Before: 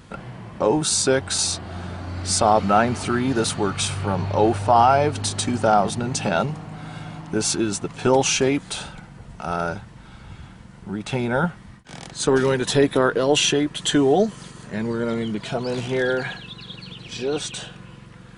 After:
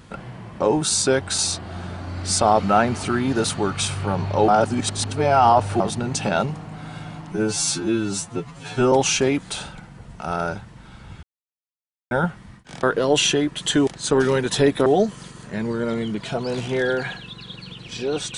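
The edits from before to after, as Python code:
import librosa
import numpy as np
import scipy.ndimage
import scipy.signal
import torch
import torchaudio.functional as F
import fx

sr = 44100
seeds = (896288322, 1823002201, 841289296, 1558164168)

y = fx.edit(x, sr, fx.reverse_span(start_s=4.48, length_s=1.32),
    fx.stretch_span(start_s=7.32, length_s=0.8, factor=2.0),
    fx.silence(start_s=10.43, length_s=0.88),
    fx.move(start_s=12.03, length_s=0.99, to_s=14.06), tone=tone)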